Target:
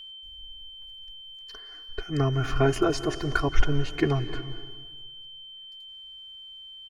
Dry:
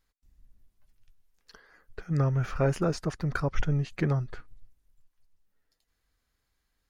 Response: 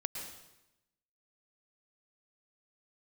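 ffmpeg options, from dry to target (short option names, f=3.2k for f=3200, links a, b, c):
-filter_complex "[0:a]aecho=1:1:2.8:0.95,aeval=exprs='val(0)+0.00708*sin(2*PI*3100*n/s)':c=same,asplit=2[a][b];[1:a]atrim=start_sample=2205,asetrate=27783,aresample=44100[c];[b][c]afir=irnorm=-1:irlink=0,volume=-11dB[d];[a][d]amix=inputs=2:normalize=0"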